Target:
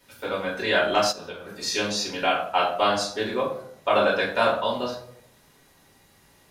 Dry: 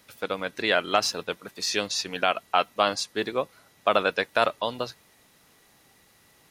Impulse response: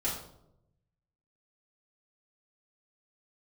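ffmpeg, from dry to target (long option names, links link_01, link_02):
-filter_complex "[1:a]atrim=start_sample=2205,asetrate=52920,aresample=44100[link_01];[0:a][link_01]afir=irnorm=-1:irlink=0,asplit=3[link_02][link_03][link_04];[link_02]afade=type=out:start_time=1.11:duration=0.02[link_05];[link_03]acompressor=threshold=-30dB:ratio=12,afade=type=in:start_time=1.11:duration=0.02,afade=type=out:start_time=1.57:duration=0.02[link_06];[link_04]afade=type=in:start_time=1.57:duration=0.02[link_07];[link_05][link_06][link_07]amix=inputs=3:normalize=0,volume=-2.5dB"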